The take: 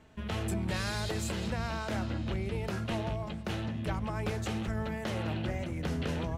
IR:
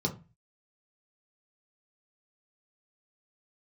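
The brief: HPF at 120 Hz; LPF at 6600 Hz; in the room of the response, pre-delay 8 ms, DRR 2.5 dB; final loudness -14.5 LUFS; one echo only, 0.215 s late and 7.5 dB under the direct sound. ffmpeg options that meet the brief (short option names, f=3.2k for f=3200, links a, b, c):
-filter_complex "[0:a]highpass=120,lowpass=6.6k,aecho=1:1:215:0.422,asplit=2[a][b];[1:a]atrim=start_sample=2205,adelay=8[c];[b][c]afir=irnorm=-1:irlink=0,volume=-8.5dB[d];[a][d]amix=inputs=2:normalize=0,volume=14dB"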